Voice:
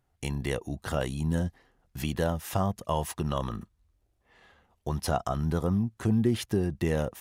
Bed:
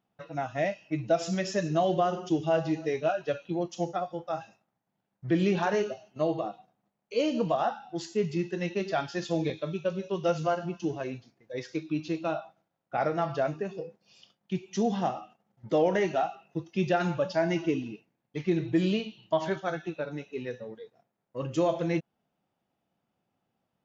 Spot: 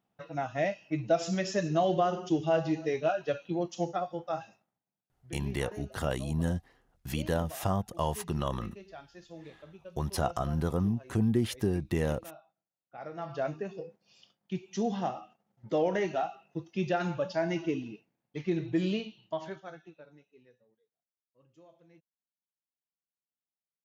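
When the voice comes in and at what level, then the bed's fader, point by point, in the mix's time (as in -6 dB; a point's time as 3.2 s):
5.10 s, -2.0 dB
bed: 4.6 s -1 dB
5.06 s -18.5 dB
12.9 s -18.5 dB
13.45 s -3.5 dB
19.05 s -3.5 dB
20.88 s -32 dB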